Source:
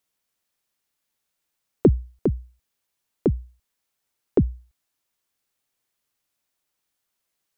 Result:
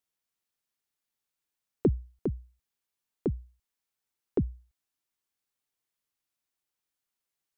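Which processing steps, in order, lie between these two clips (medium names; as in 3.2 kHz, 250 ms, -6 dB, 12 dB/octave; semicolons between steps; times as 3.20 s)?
peaking EQ 590 Hz -3.5 dB 0.27 oct; trim -8.5 dB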